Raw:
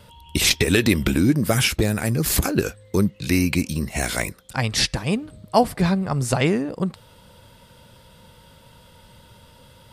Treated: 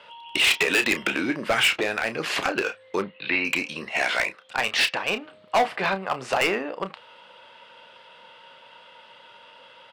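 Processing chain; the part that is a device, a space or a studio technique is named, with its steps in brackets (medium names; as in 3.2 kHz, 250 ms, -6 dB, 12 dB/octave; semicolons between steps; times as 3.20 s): megaphone (band-pass 660–2600 Hz; peaking EQ 2.8 kHz +7 dB 0.43 oct; hard clipper -21.5 dBFS, distortion -7 dB; doubling 31 ms -10.5 dB); 3.02–3.45 s: elliptic low-pass 4.1 kHz, stop band 50 dB; trim +5.5 dB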